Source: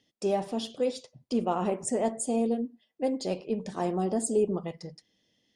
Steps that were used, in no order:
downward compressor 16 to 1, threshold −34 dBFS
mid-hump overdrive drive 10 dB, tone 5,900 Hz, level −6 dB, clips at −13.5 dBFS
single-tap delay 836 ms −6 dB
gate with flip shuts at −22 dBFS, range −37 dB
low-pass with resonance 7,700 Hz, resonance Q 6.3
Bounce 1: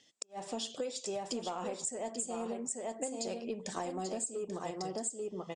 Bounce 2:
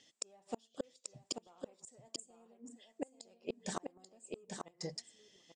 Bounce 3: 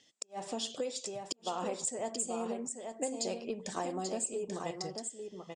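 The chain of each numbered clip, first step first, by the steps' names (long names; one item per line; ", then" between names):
single-tap delay, then mid-hump overdrive, then low-pass with resonance, then downward compressor, then gate with flip
mid-hump overdrive, then low-pass with resonance, then gate with flip, then single-tap delay, then downward compressor
low-pass with resonance, then downward compressor, then single-tap delay, then gate with flip, then mid-hump overdrive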